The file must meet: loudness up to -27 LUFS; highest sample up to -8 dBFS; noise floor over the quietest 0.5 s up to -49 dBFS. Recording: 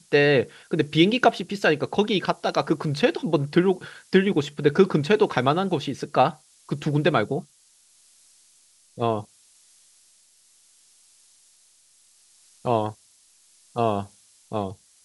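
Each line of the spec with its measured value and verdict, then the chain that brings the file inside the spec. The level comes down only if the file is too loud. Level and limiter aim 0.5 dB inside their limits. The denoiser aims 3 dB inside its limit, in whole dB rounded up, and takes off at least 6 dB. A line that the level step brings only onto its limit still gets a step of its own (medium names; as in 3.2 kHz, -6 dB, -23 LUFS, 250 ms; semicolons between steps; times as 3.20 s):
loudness -23.5 LUFS: fail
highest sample -4.0 dBFS: fail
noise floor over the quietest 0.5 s -59 dBFS: pass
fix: trim -4 dB; peak limiter -8.5 dBFS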